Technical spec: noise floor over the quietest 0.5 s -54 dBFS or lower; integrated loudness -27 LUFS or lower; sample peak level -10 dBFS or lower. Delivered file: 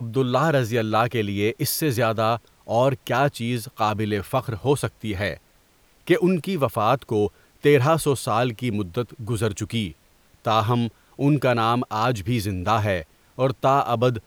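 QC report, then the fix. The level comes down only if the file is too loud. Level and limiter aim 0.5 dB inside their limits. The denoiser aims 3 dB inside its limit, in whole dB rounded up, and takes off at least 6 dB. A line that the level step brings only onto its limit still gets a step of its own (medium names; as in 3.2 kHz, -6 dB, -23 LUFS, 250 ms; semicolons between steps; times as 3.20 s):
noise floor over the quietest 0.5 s -58 dBFS: pass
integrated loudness -23.0 LUFS: fail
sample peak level -6.0 dBFS: fail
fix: trim -4.5 dB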